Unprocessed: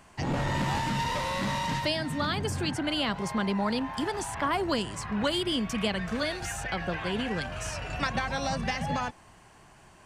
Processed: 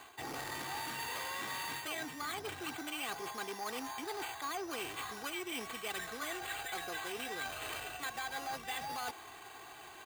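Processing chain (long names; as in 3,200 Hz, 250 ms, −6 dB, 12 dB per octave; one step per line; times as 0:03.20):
decimation without filtering 8×
high-pass filter 610 Hz 6 dB per octave
comb filter 2.6 ms, depth 66%
reversed playback
downward compressor 5 to 1, threshold −43 dBFS, peak gain reduction 17.5 dB
reversed playback
saturating transformer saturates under 1,500 Hz
level +5 dB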